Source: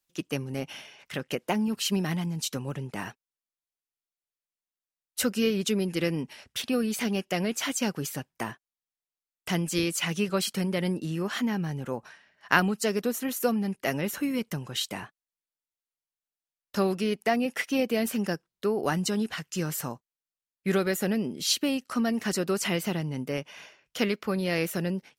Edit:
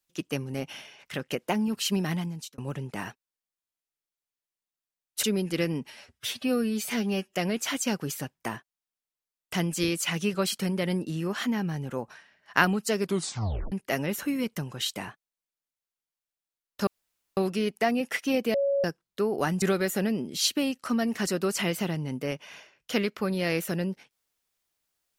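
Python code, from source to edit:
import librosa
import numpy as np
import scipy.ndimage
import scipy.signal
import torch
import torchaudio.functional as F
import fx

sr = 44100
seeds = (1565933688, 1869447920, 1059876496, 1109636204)

y = fx.edit(x, sr, fx.fade_out_span(start_s=2.18, length_s=0.4),
    fx.cut(start_s=5.23, length_s=0.43),
    fx.stretch_span(start_s=6.34, length_s=0.96, factor=1.5),
    fx.tape_stop(start_s=12.95, length_s=0.72),
    fx.insert_room_tone(at_s=16.82, length_s=0.5),
    fx.bleep(start_s=17.99, length_s=0.3, hz=558.0, db=-22.0),
    fx.cut(start_s=19.07, length_s=1.61), tone=tone)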